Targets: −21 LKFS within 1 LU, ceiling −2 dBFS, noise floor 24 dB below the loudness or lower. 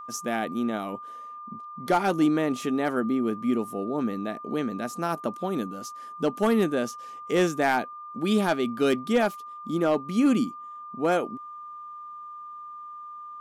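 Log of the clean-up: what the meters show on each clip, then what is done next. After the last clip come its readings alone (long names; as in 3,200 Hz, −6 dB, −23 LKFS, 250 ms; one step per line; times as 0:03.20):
share of clipped samples 0.2%; peaks flattened at −14.5 dBFS; interfering tone 1,200 Hz; level of the tone −38 dBFS; integrated loudness −26.5 LKFS; sample peak −14.5 dBFS; target loudness −21.0 LKFS
→ clipped peaks rebuilt −14.5 dBFS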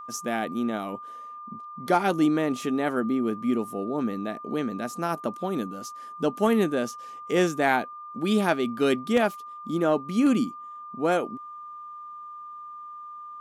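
share of clipped samples 0.0%; interfering tone 1,200 Hz; level of the tone −38 dBFS
→ notch filter 1,200 Hz, Q 30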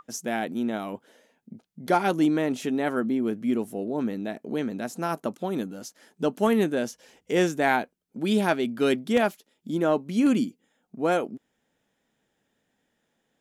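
interfering tone none found; integrated loudness −26.5 LKFS; sample peak −8.0 dBFS; target loudness −21.0 LKFS
→ level +5.5 dB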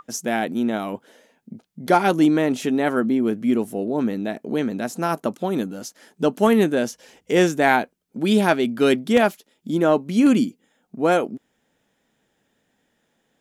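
integrated loudness −21.0 LKFS; sample peak −2.5 dBFS; background noise floor −71 dBFS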